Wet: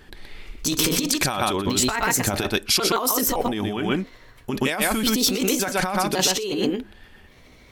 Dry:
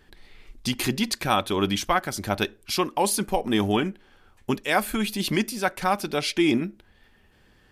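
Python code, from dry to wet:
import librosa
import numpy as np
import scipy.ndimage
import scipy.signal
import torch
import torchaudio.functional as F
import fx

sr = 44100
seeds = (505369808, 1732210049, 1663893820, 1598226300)

y = fx.pitch_trill(x, sr, semitones=4.0, every_ms=559)
y = y + 10.0 ** (-6.0 / 20.0) * np.pad(y, (int(124 * sr / 1000.0), 0))[:len(y)]
y = fx.over_compress(y, sr, threshold_db=-28.0, ratio=-1.0)
y = fx.dynamic_eq(y, sr, hz=7700.0, q=1.0, threshold_db=-42.0, ratio=4.0, max_db=5)
y = y * librosa.db_to_amplitude(5.0)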